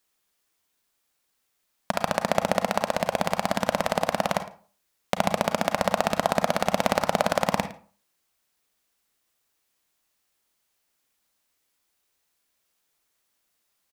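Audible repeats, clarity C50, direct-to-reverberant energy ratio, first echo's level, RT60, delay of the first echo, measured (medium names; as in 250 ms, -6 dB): 1, 11.0 dB, 8.5 dB, -19.0 dB, 0.40 s, 110 ms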